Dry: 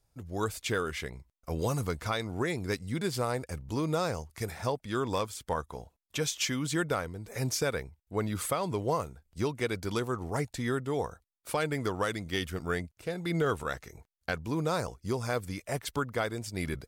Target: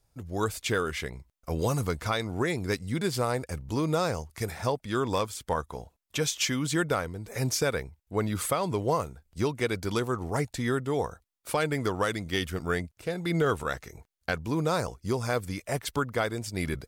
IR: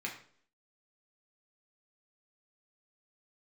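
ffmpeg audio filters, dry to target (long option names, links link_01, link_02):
-af "volume=3dB"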